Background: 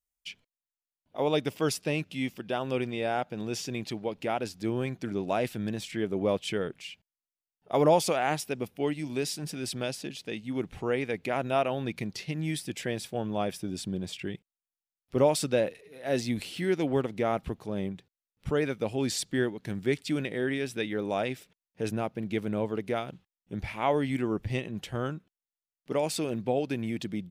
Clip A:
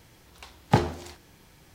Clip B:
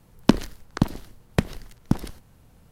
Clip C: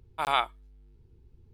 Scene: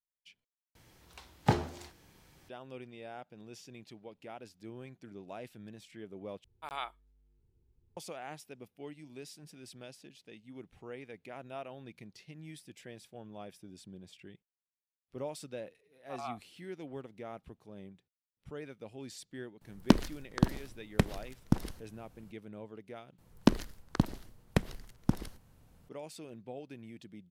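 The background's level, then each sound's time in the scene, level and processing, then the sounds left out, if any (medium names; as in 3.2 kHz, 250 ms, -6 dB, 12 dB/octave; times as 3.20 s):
background -16.5 dB
0.75 s: replace with A -6 dB
6.44 s: replace with C -13.5 dB
15.91 s: add C -7.5 dB + vowel filter a
19.61 s: add B -5.5 dB
23.18 s: replace with B -7 dB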